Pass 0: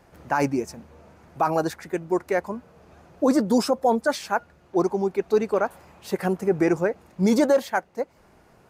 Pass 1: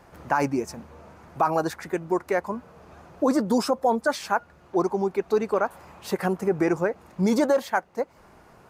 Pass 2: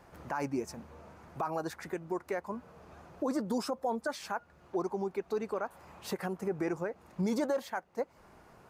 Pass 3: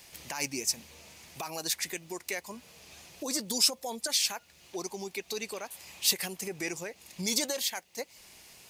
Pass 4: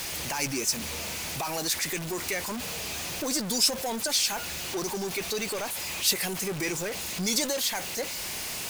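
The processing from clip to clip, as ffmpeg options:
-af "equalizer=f=1.1k:w=1.5:g=4.5,acompressor=threshold=-28dB:ratio=1.5,volume=2dB"
-af "alimiter=limit=-18.5dB:level=0:latency=1:release=317,volume=-5dB"
-af "aexciter=amount=15.1:drive=2.5:freq=2.1k,volume=-5dB"
-af "aeval=exprs='val(0)+0.5*0.0335*sgn(val(0))':c=same,aeval=exprs='val(0)+0.00126*sin(2*PI*1500*n/s)':c=same"

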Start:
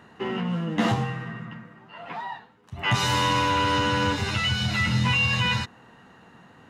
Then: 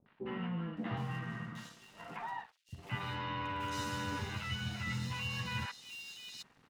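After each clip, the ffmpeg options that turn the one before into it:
-filter_complex "[0:a]areverse,acompressor=threshold=-30dB:ratio=6,areverse,aeval=exprs='sgn(val(0))*max(abs(val(0))-0.00299,0)':c=same,acrossover=split=590|3300[a][b][c];[b]adelay=60[d];[c]adelay=770[e];[a][d][e]amix=inputs=3:normalize=0,volume=-4dB"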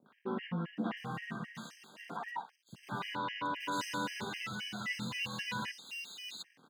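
-af "highpass=f=170:w=0.5412,highpass=f=170:w=1.3066,afftfilt=real='re*gt(sin(2*PI*3.8*pts/sr)*(1-2*mod(floor(b*sr/1024/1600),2)),0)':imag='im*gt(sin(2*PI*3.8*pts/sr)*(1-2*mod(floor(b*sr/1024/1600),2)),0)':win_size=1024:overlap=0.75,volume=5dB"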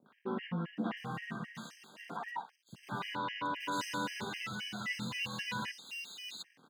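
-af anull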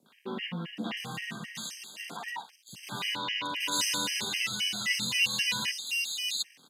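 -filter_complex "[0:a]acrossover=split=260[a][b];[b]aexciter=amount=4.7:drive=5:freq=2.1k[c];[a][c]amix=inputs=2:normalize=0,aresample=32000,aresample=44100"

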